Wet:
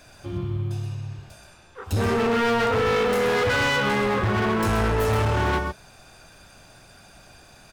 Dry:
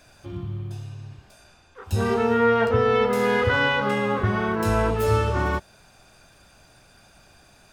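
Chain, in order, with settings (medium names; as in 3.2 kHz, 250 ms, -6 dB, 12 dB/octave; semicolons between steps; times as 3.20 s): delay 128 ms -7 dB; hard clipper -23 dBFS, distortion -7 dB; trim +3.5 dB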